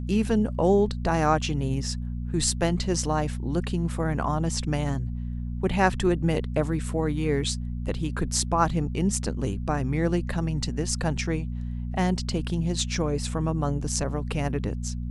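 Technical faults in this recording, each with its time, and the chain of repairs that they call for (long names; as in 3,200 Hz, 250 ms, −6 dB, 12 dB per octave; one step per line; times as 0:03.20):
mains hum 60 Hz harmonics 4 −31 dBFS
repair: hum removal 60 Hz, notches 4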